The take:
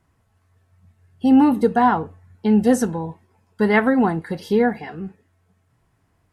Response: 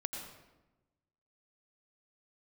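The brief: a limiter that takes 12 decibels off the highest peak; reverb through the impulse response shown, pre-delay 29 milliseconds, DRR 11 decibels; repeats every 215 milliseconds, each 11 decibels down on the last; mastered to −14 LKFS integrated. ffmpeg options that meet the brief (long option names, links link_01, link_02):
-filter_complex "[0:a]alimiter=limit=-16.5dB:level=0:latency=1,aecho=1:1:215|430|645:0.282|0.0789|0.0221,asplit=2[link_01][link_02];[1:a]atrim=start_sample=2205,adelay=29[link_03];[link_02][link_03]afir=irnorm=-1:irlink=0,volume=-11.5dB[link_04];[link_01][link_04]amix=inputs=2:normalize=0,volume=11.5dB"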